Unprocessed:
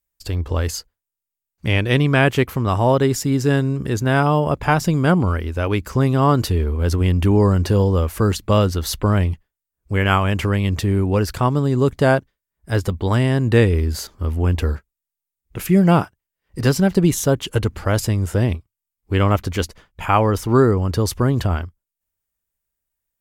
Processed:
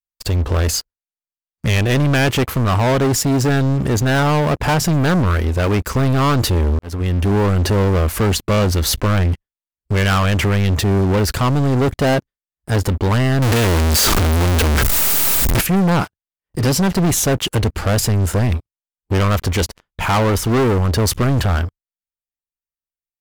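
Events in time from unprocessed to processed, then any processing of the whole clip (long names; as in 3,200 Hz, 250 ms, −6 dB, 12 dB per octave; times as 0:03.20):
0:06.79–0:08.01: fade in equal-power
0:13.42–0:15.61: sign of each sample alone
whole clip: leveller curve on the samples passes 5; level −9 dB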